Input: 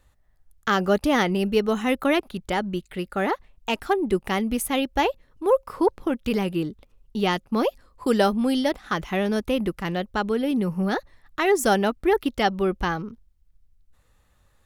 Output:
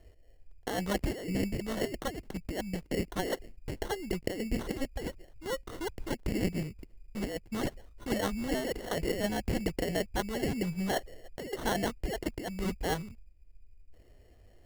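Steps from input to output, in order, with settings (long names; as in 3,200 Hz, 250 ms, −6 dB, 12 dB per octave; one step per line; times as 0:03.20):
drawn EQ curve 100 Hz 0 dB, 300 Hz −22 dB, 1,300 Hz −19 dB, 2,100 Hz +14 dB, 3,700 Hz −12 dB, 10,000 Hz −19 dB
compressor whose output falls as the input rises −32 dBFS, ratio −1
decimation without filtering 18×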